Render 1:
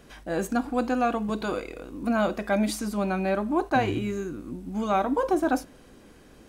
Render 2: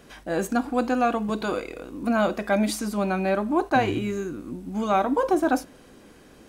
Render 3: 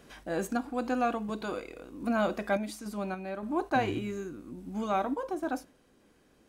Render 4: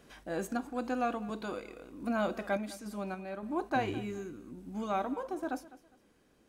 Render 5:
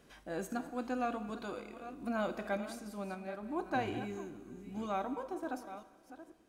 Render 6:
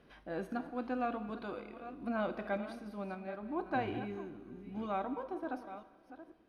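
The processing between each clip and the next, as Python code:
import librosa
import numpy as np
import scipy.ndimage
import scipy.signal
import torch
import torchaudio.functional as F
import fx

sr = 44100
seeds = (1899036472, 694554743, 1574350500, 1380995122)

y1 = fx.low_shelf(x, sr, hz=87.0, db=-7.0)
y1 = y1 * 10.0 ** (2.5 / 20.0)
y2 = fx.rider(y1, sr, range_db=10, speed_s=2.0)
y2 = fx.tremolo_random(y2, sr, seeds[0], hz=3.5, depth_pct=55)
y2 = y2 * 10.0 ** (-7.0 / 20.0)
y3 = fx.echo_feedback(y2, sr, ms=204, feedback_pct=29, wet_db=-18.5)
y3 = y3 * 10.0 ** (-3.5 / 20.0)
y4 = fx.reverse_delay(y3, sr, ms=486, wet_db=-12.5)
y4 = fx.rev_schroeder(y4, sr, rt60_s=1.5, comb_ms=25, drr_db=14.0)
y4 = y4 * 10.0 ** (-3.5 / 20.0)
y5 = np.convolve(y4, np.full(6, 1.0 / 6))[:len(y4)]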